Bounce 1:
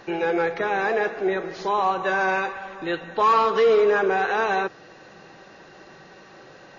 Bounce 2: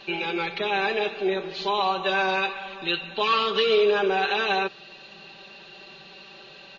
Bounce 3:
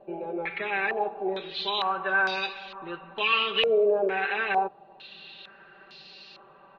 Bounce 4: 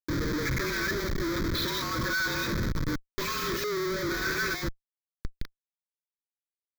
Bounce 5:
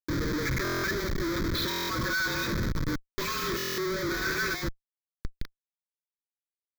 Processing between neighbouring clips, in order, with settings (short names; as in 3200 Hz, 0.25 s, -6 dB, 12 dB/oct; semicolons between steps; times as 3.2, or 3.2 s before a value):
band shelf 3300 Hz +14.5 dB 1.1 oct; comb 5.1 ms, depth 80%; gain -6 dB
stepped low-pass 2.2 Hz 620–4900 Hz; gain -7 dB
frequency shift -44 Hz; Schmitt trigger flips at -35.5 dBFS; fixed phaser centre 2800 Hz, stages 6; gain +2.5 dB
stuck buffer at 0.63/1.69/3.57, samples 1024, times 8